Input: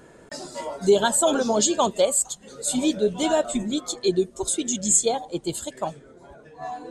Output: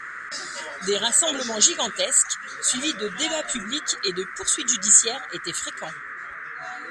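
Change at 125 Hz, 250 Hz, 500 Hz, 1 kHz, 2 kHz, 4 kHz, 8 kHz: -8.0 dB, -8.0 dB, -8.0 dB, -4.5 dB, +8.5 dB, +6.0 dB, +5.0 dB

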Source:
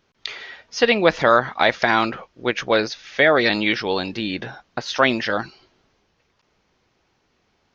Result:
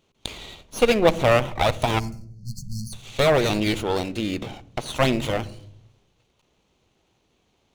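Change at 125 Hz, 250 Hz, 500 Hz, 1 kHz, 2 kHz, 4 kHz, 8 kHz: +7.0 dB, -1.5 dB, -2.0 dB, -4.5 dB, -9.0 dB, -4.0 dB, no reading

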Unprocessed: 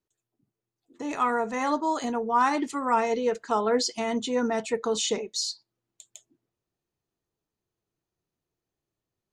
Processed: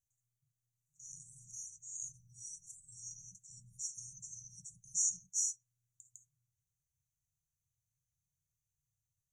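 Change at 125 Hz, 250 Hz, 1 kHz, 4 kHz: no reading, under -40 dB, under -40 dB, -22.0 dB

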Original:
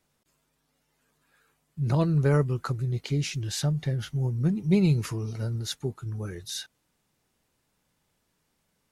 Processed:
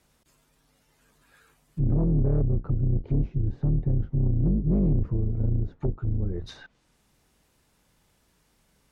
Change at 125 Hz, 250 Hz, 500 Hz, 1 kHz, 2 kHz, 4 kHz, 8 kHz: +1.5 dB, 0.0 dB, -4.0 dB, under -10 dB, under -10 dB, under -15 dB, under -20 dB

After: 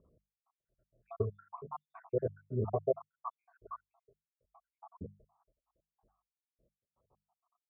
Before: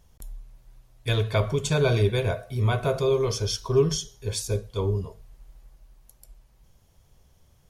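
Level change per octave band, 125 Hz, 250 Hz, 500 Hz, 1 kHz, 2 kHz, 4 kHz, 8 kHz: -18.0 dB, -14.5 dB, -13.0 dB, -9.5 dB, under -30 dB, under -40 dB, under -40 dB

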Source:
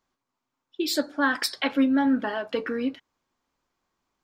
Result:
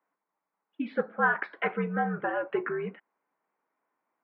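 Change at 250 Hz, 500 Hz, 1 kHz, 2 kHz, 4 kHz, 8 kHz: -10.5 dB, -1.0 dB, +0.5 dB, -0.5 dB, -21.5 dB, under -40 dB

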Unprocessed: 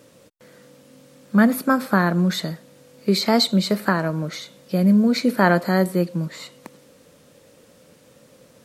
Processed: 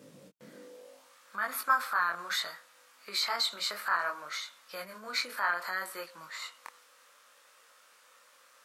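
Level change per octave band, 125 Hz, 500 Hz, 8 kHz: under -35 dB, -21.0 dB, -6.0 dB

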